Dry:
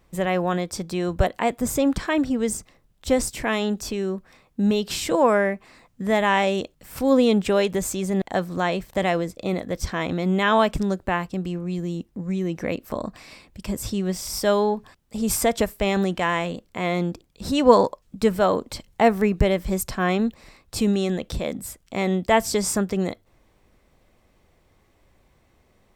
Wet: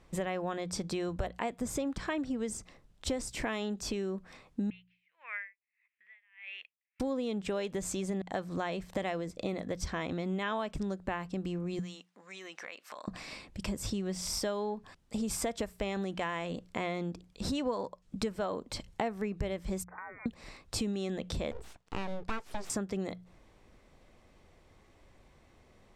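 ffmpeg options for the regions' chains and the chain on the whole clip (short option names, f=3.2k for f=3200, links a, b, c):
-filter_complex "[0:a]asettb=1/sr,asplit=3[a][b][c];[a]atrim=end=4.704[d];[b]atrim=start=4.7:end=7,asetpts=PTS-STARTPTS,afade=t=in:d=0.004:c=qsin,afade=t=out:st=2.296:d=0.004:c=qsin,asuperpass=centerf=2200:order=4:qfactor=2.8,aeval=exprs='val(0)*pow(10,-39*(0.5-0.5*cos(2*PI*1.6*n/s))/20)':c=same[e];[c]atrim=start=6.996[f];[d][e]acrossfade=d=0.004:c1=hsin:c2=qsin[g];[g][f]acrossfade=d=0.004:c1=qsin:c2=hsin,asettb=1/sr,asplit=3[h][i][j];[h]atrim=end=11.794[k];[i]atrim=start=11.79:end=13.08,asetpts=PTS-STARTPTS,afade=t=in:d=0.004:c=qsin,afade=t=out:st=1.286:d=0.004:c=qsin,highpass=1.2k,highshelf=f=10k:g=-9.5,acompressor=threshold=-40dB:ratio=5:attack=3.2:release=140:knee=1:detection=peak[l];[j]atrim=start=13.076[m];[k][l]acrossfade=d=0.004:c1=hsin:c2=qsin[n];[n][m]acrossfade=d=0.004:c1=qsin:c2=hsin,asettb=1/sr,asplit=3[o][p][q];[o]atrim=end=19.844[r];[p]atrim=start=19.84:end=20.26,asetpts=PTS-STARTPTS,afade=t=in:d=0.004:c=qsin,afade=t=out:st=0.416:d=0.004:c=qsin,highpass=1.4k,acompressor=threshold=-38dB:ratio=16:attack=3.2:release=140:knee=1:detection=peak,lowpass=f=2.2k:t=q:w=0.5098,lowpass=f=2.2k:t=q:w=0.6013,lowpass=f=2.2k:t=q:w=0.9,lowpass=f=2.2k:t=q:w=2.563,afreqshift=-2600[s];[q]atrim=start=20.256[t];[r][s]acrossfade=d=0.004:c1=hsin:c2=qsin[u];[u][t]acrossfade=d=0.004:c1=qsin:c2=hsin,asettb=1/sr,asplit=3[v][w][x];[v]atrim=end=21.514[y];[w]atrim=start=21.51:end=22.7,asetpts=PTS-STARTPTS,afade=t=in:d=0.004:c=qsin,afade=t=out:st=1.186:d=0.004:c=qsin,highpass=f=190:w=0.5412,highpass=f=190:w=1.3066,aemphasis=mode=reproduction:type=75kf,aeval=exprs='abs(val(0))':c=same[z];[x]atrim=start=22.696[aa];[y][z]acrossfade=d=0.004:c1=hsin:c2=qsin[ab];[ab][aa]acrossfade=d=0.004:c1=qsin:c2=hsin,lowpass=8.9k,bandreject=f=60:t=h:w=6,bandreject=f=120:t=h:w=6,bandreject=f=180:t=h:w=6,acompressor=threshold=-32dB:ratio=6"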